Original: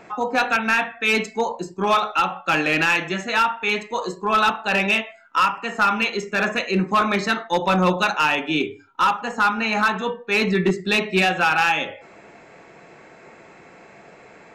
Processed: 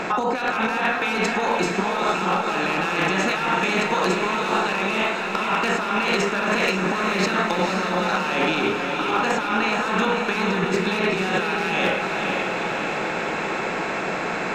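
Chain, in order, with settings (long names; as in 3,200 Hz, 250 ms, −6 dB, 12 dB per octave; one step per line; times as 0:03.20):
compressor on every frequency bin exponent 0.6
compressor whose output falls as the input rises −22 dBFS, ratio −1
wave folding −10.5 dBFS
on a send: feedback delay with all-pass diffusion 496 ms, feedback 66%, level −4.5 dB
on the sum: level −2 dB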